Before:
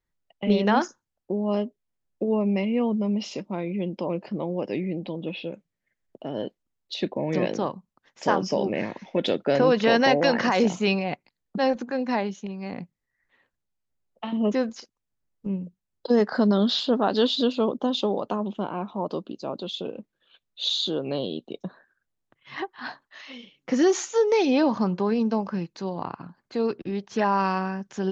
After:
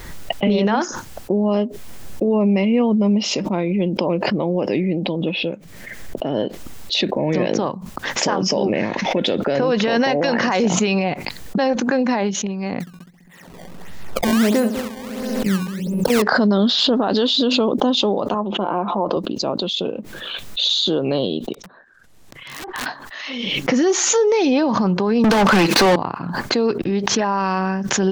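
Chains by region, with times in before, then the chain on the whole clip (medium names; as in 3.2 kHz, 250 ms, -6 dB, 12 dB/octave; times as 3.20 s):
12.80–16.22 s: multi-head delay 67 ms, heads first and third, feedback 47%, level -13 dB + decimation with a swept rate 19×, swing 160% 1.5 Hz
18.34–19.17 s: band-pass filter 720 Hz, Q 0.59 + comb 5.8 ms, depth 36%
21.53–22.86 s: low-pass that closes with the level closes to 2.7 kHz, closed at -32 dBFS + compression 5:1, threshold -48 dBFS + integer overflow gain 42.5 dB
25.24–25.96 s: dead-time distortion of 0.056 ms + high-pass 180 Hz 24 dB/octave + overdrive pedal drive 36 dB, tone 4.3 kHz, clips at -13.5 dBFS
whole clip: peak limiter -18.5 dBFS; swell ahead of each attack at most 31 dB/s; trim +8.5 dB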